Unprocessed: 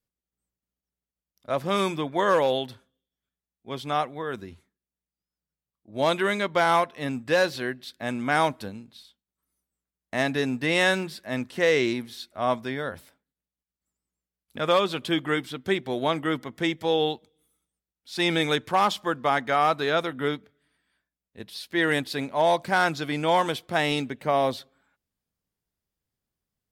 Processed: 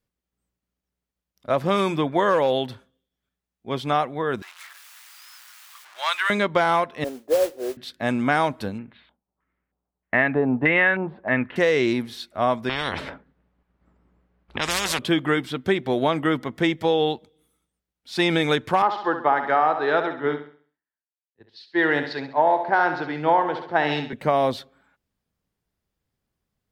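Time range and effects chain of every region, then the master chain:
4.42–6.30 s: jump at every zero crossing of -38 dBFS + high-pass 1.1 kHz 24 dB/octave
7.04–7.77 s: Butterworth band-pass 510 Hz, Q 1.6 + modulation noise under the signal 11 dB
8.78–11.56 s: resonant high shelf 4.4 kHz -13 dB, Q 1.5 + LFO low-pass square 1.6 Hz 820–1900 Hz
12.69–14.99 s: level-controlled noise filter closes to 1.5 kHz, open at -20.5 dBFS + spectrum-flattening compressor 10:1
18.82–24.13 s: cabinet simulation 170–4400 Hz, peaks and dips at 200 Hz -8 dB, 370 Hz +4 dB, 860 Hz +7 dB, 1.7 kHz +4 dB, 2.4 kHz -6 dB, 3.4 kHz -8 dB + feedback delay 67 ms, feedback 51%, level -9 dB + three bands expanded up and down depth 100%
whole clip: treble shelf 4.2 kHz -8 dB; compression, threshold -23 dBFS; trim +7 dB

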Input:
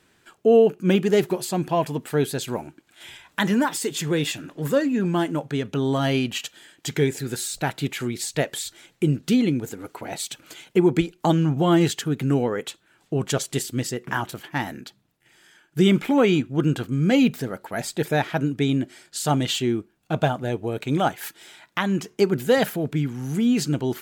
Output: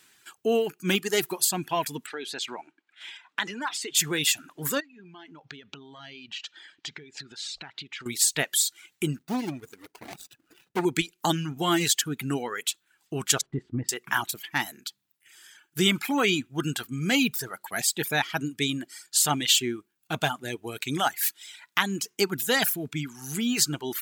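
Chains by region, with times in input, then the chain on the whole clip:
2.06–3.95 s: compression 4:1, threshold -23 dBFS + band-pass 290–3800 Hz + tape noise reduction on one side only decoder only
4.80–8.06 s: low-pass 4.9 kHz 24 dB/octave + compression 16:1, threshold -36 dBFS
9.18–10.85 s: median filter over 41 samples + transformer saturation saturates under 600 Hz
13.41–13.89 s: low-pass 1.4 kHz + tilt EQ -3.5 dB/octave + compression 5:1, threshold -16 dBFS
whole clip: tilt EQ +3 dB/octave; reverb removal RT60 0.98 s; peaking EQ 550 Hz -8.5 dB 0.63 oct

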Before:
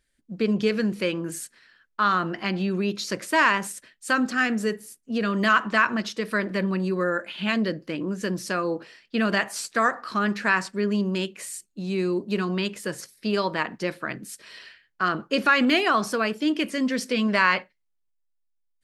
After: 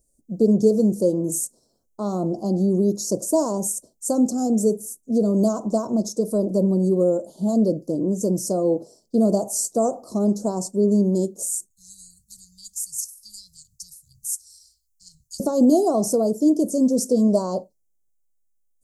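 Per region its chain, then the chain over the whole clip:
11.70–15.40 s: inverse Chebyshev band-stop 270–1100 Hz, stop band 70 dB + treble shelf 4.3 kHz +4 dB
whole clip: elliptic band-stop 670–6500 Hz, stop band 80 dB; tone controls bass -2 dB, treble +3 dB; trim +8 dB

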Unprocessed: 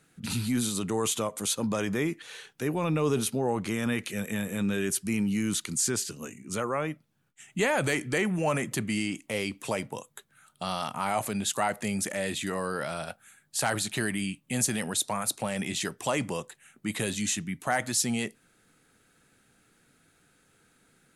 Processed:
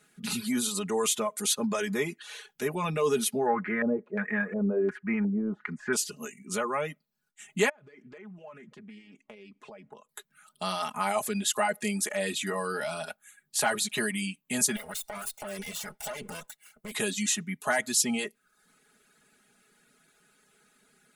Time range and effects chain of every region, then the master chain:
3.46–5.93 s: resonant high shelf 2.5 kHz -10.5 dB, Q 1.5 + LFO low-pass square 1.4 Hz 570–1800 Hz
7.69–10.09 s: compression 8:1, threshold -42 dBFS + tape spacing loss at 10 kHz 27 dB + loudspeaker Doppler distortion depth 0.17 ms
14.76–16.92 s: comb filter that takes the minimum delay 1.4 ms + treble shelf 12 kHz +9 dB + compression 12:1, threshold -33 dBFS
whole clip: reverb removal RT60 0.57 s; bass shelf 160 Hz -11.5 dB; comb 4.8 ms, depth 80%

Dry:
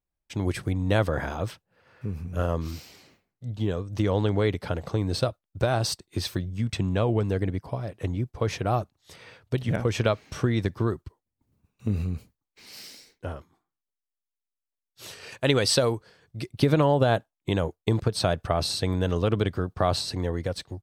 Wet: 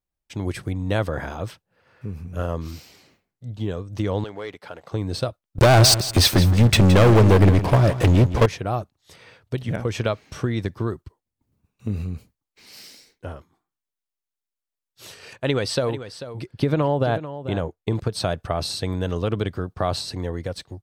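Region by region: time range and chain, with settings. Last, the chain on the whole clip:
4.24–4.92 s: high-pass 1.5 kHz 6 dB/octave + treble shelf 2.3 kHz -11 dB + waveshaping leveller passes 1
5.58–8.46 s: waveshaping leveller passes 5 + feedback delay 167 ms, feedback 22%, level -12.5 dB
15.33–17.95 s: treble shelf 4.2 kHz -8.5 dB + delay 441 ms -12.5 dB
whole clip: none

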